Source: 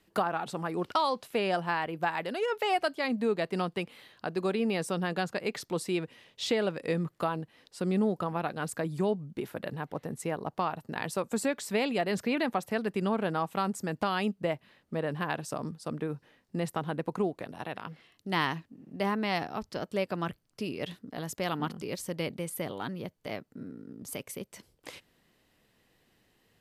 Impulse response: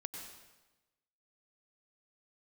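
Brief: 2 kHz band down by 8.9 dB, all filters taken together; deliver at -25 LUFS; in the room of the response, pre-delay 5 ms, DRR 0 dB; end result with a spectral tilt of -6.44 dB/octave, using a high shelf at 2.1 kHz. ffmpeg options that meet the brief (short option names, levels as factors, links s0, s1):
-filter_complex "[0:a]equalizer=f=2000:t=o:g=-8.5,highshelf=f=2100:g=-5.5,asplit=2[s0][s1];[1:a]atrim=start_sample=2205,adelay=5[s2];[s1][s2]afir=irnorm=-1:irlink=0,volume=1.26[s3];[s0][s3]amix=inputs=2:normalize=0,volume=1.78"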